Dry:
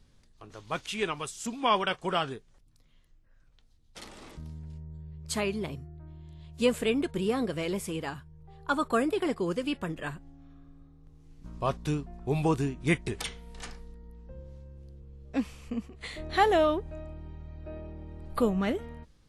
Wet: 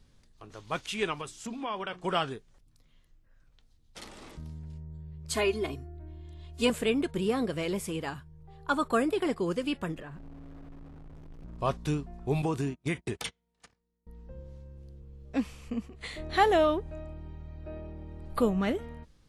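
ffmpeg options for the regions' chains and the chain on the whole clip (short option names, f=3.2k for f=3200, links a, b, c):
-filter_complex "[0:a]asettb=1/sr,asplit=3[a][b][c];[a]atrim=end=1.214[d];[b]atrim=start=1.21:end=2.04,asetpts=PTS-STARTPTS,afade=t=in:d=0.004:c=qsin,afade=t=out:st=0.826:d=0.004:c=qsin,aemphasis=mode=reproduction:type=cd,bandreject=f=60:t=h:w=6,bandreject=f=120:t=h:w=6,bandreject=f=180:t=h:w=6,bandreject=f=240:t=h:w=6,bandreject=f=300:t=h:w=6,bandreject=f=360:t=h:w=6,acompressor=threshold=-33dB:ratio=3:attack=3.2:release=140:knee=1:detection=peak[e];[c]atrim=start=2.036[f];[d][e]acrossfade=d=0.004:c1=hsin:c2=qsin[g];[g][f]acrossfade=d=0.004:c1=qsin:c2=hsin,asettb=1/sr,asplit=3[h][i][j];[h]atrim=end=5.344[k];[i]atrim=start=5.34:end=6.7,asetpts=PTS-STARTPTS,afade=t=in:d=0.004:c=qsin,afade=t=out:st=1.356:d=0.004:c=qsin,equalizer=f=1.3k:t=o:w=0.22:g=3,aecho=1:1:2.8:0.92,atrim=end_sample=59976[l];[j]atrim=start=6.696[m];[k][l]acrossfade=d=0.004:c1=hsin:c2=qsin[n];[n][m]acrossfade=d=0.004:c1=qsin:c2=hsin,asettb=1/sr,asplit=3[o][p][q];[o]atrim=end=10.004[r];[p]atrim=start=10:end=11.59,asetpts=PTS-STARTPTS,afade=t=in:d=0.004:c=qsin,afade=t=out:st=1.586:d=0.004:c=qsin,aeval=exprs='val(0)+0.5*0.00531*sgn(val(0))':c=same,lowpass=f=1.2k:p=1,acompressor=threshold=-40dB:ratio=6:attack=3.2:release=140:knee=1:detection=peak[s];[q]atrim=start=11.586[t];[r][s]acrossfade=d=0.004:c1=hsin:c2=qsin[u];[u][t]acrossfade=d=0.004:c1=qsin:c2=hsin,asettb=1/sr,asplit=3[v][w][x];[v]atrim=end=12.424[y];[w]atrim=start=12.42:end=14.07,asetpts=PTS-STARTPTS,afade=t=in:d=0.004:c=qsin,afade=t=out:st=1.646:d=0.004:c=qsin,agate=range=-29dB:threshold=-38dB:ratio=16:release=100:detection=peak,highpass=83,acompressor=threshold=-25dB:ratio=6:attack=3.2:release=140:knee=1:detection=peak[z];[x]atrim=start=14.066[aa];[y][z]acrossfade=d=0.004:c1=hsin:c2=qsin[ab];[ab][aa]acrossfade=d=0.004:c1=qsin:c2=hsin"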